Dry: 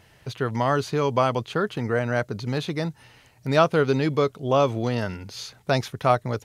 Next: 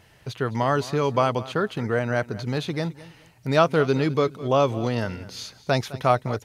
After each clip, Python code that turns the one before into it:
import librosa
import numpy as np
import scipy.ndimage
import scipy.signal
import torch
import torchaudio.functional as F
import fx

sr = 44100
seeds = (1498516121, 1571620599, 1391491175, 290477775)

y = fx.echo_feedback(x, sr, ms=210, feedback_pct=26, wet_db=-18.0)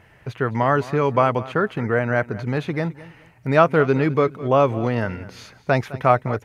y = fx.high_shelf_res(x, sr, hz=2900.0, db=-9.0, q=1.5)
y = y * librosa.db_to_amplitude(3.0)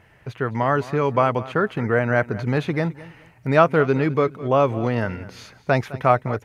y = fx.rider(x, sr, range_db=10, speed_s=2.0)
y = y * librosa.db_to_amplitude(-1.0)